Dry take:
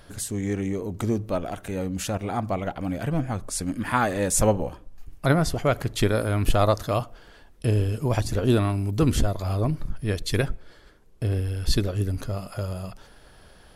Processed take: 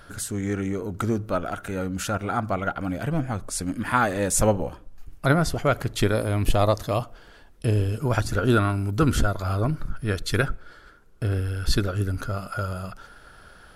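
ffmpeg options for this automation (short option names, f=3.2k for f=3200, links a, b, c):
-af "asetnsamples=n=441:p=0,asendcmd='2.89 equalizer g 4.5;6.14 equalizer g -4;7.02 equalizer g 3;8 equalizer g 14.5',equalizer=f=1.4k:t=o:w=0.31:g=13.5"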